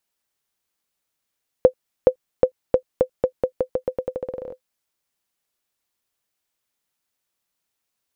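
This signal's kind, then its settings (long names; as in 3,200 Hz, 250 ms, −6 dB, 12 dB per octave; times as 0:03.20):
bouncing ball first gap 0.42 s, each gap 0.86, 511 Hz, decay 86 ms −1 dBFS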